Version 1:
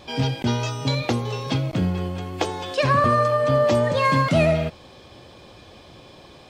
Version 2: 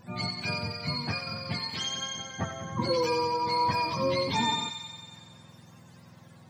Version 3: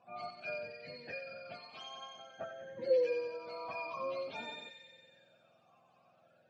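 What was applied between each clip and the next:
spectrum inverted on a logarithmic axis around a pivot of 760 Hz; feedback echo behind a high-pass 92 ms, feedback 72%, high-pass 2 kHz, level -6.5 dB; trim -7.5 dB
talking filter a-e 0.51 Hz; trim +1.5 dB

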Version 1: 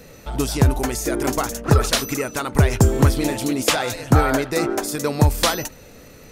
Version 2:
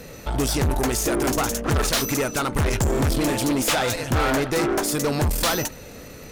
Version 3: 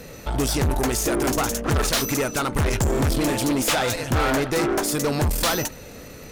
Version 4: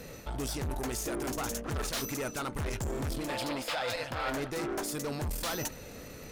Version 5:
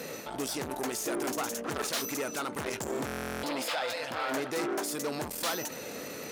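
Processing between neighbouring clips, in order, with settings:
valve stage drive 24 dB, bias 0.5; trim +6 dB
no audible change
time-frequency box 3.29–4.29 s, 460–5400 Hz +9 dB; reverse; compression 10:1, threshold -26 dBFS, peak gain reduction 15.5 dB; reverse; trim -5.5 dB
peak limiter -33 dBFS, peak gain reduction 10 dB; high-pass 240 Hz 12 dB/octave; buffer glitch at 3.06 s, samples 1024, times 15; trim +7.5 dB

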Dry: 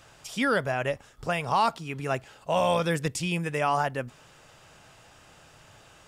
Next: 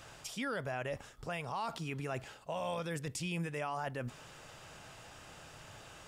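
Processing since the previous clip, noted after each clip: reverse; compression 4:1, threshold -34 dBFS, peak gain reduction 13 dB; reverse; peak limiter -30 dBFS, peak gain reduction 8.5 dB; trim +1 dB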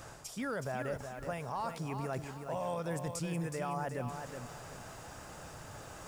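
peaking EQ 3 kHz -10.5 dB 1.2 oct; reverse; upward compressor, threshold -43 dBFS; reverse; bit-crushed delay 370 ms, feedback 35%, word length 10-bit, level -6.5 dB; trim +1.5 dB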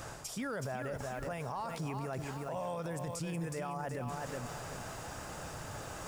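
peak limiter -35 dBFS, peak gain reduction 9 dB; trim +4.5 dB

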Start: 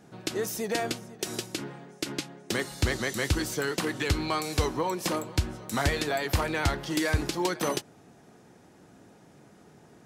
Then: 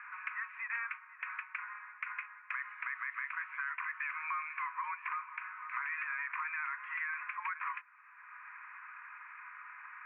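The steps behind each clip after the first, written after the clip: Chebyshev band-pass 1–2.5 kHz, order 5; peak limiter -30 dBFS, peak gain reduction 9.5 dB; three bands compressed up and down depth 70%; trim +2 dB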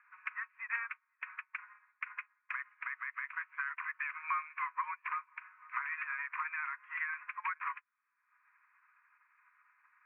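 upward expansion 2.5:1, over -54 dBFS; trim +4.5 dB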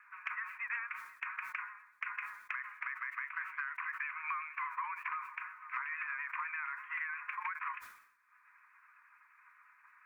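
compression 4:1, threshold -43 dBFS, peak gain reduction 11 dB; vibrato 8.4 Hz 39 cents; decay stretcher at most 77 dB/s; trim +5.5 dB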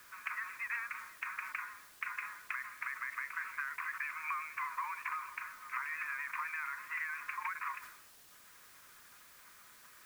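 word length cut 10-bit, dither triangular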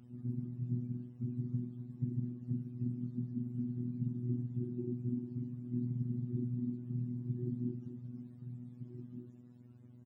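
spectrum inverted on a logarithmic axis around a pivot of 570 Hz; echo from a far wall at 260 m, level -9 dB; robot voice 122 Hz; trim +2.5 dB

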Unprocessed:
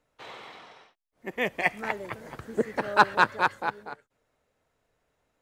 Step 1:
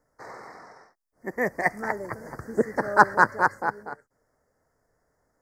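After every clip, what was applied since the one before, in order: elliptic band-stop 1.9–4.9 kHz, stop band 60 dB; trim +3.5 dB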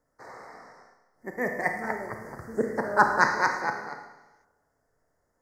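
Schroeder reverb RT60 1.1 s, combs from 25 ms, DRR 4 dB; time-frequency box 3.21–4.44 s, 1.8–6.8 kHz +12 dB; trim -4 dB

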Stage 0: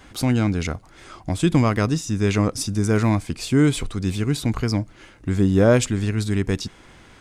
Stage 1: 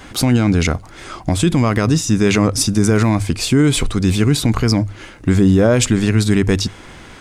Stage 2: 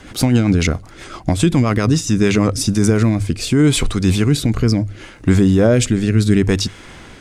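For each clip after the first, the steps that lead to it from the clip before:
hum notches 50/100 Hz; loudness maximiser +13.5 dB; trim -3.5 dB
rotary cabinet horn 7.5 Hz, later 0.7 Hz, at 2.00 s; trim +1.5 dB

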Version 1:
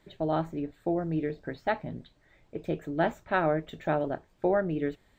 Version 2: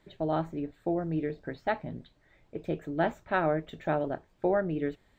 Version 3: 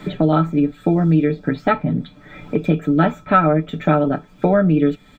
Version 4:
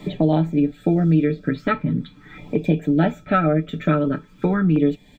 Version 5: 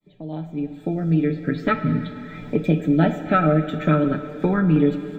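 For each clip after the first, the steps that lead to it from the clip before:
treble shelf 6.6 kHz -4.5 dB; trim -1 dB
comb 6.8 ms; small resonant body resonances 210/1300/2400/3400 Hz, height 15 dB, ringing for 55 ms; three bands compressed up and down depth 70%; trim +7.5 dB
LFO notch saw down 0.42 Hz 580–1500 Hz; trim -1.5 dB
fade-in on the opening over 1.68 s; plate-style reverb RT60 2.8 s, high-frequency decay 1×, DRR 8.5 dB

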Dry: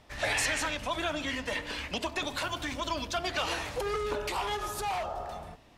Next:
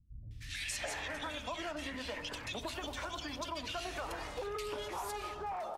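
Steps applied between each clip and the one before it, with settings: three bands offset in time lows, highs, mids 310/610 ms, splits 170/2000 Hz; compression 2.5:1, threshold -36 dBFS, peak gain reduction 6.5 dB; trim -2.5 dB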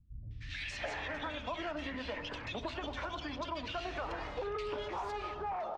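distance through air 190 m; trim +2.5 dB

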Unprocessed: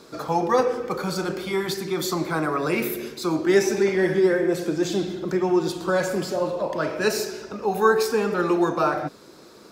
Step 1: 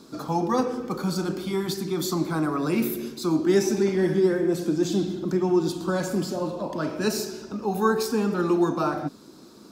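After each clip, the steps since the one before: graphic EQ 250/500/2000 Hz +8/-7/-8 dB; trim -1 dB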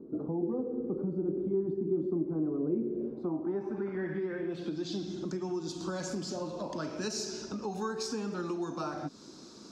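compression 4:1, threshold -31 dBFS, peak gain reduction 13.5 dB; low-pass sweep 400 Hz -> 6.2 kHz, 2.83–5.15 s; trim -3 dB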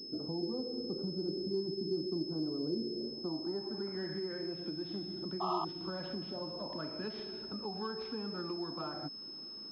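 painted sound noise, 5.40–5.65 s, 640–1300 Hz -30 dBFS; class-D stage that switches slowly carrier 5.2 kHz; trim -5 dB

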